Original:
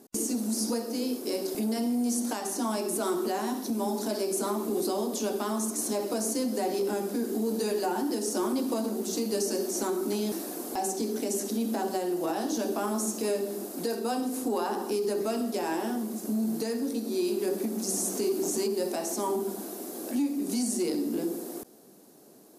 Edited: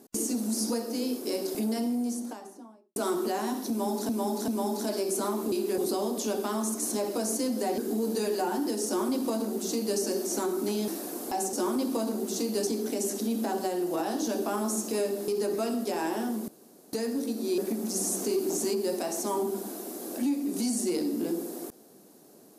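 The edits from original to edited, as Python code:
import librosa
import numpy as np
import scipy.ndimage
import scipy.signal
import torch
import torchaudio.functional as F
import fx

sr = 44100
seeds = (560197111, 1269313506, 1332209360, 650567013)

y = fx.studio_fade_out(x, sr, start_s=1.63, length_s=1.33)
y = fx.edit(y, sr, fx.repeat(start_s=3.7, length_s=0.39, count=3),
    fx.cut(start_s=6.74, length_s=0.48),
    fx.duplicate(start_s=8.3, length_s=1.14, to_s=10.97),
    fx.cut(start_s=13.58, length_s=1.37),
    fx.room_tone_fill(start_s=16.15, length_s=0.45),
    fx.move(start_s=17.25, length_s=0.26, to_s=4.74), tone=tone)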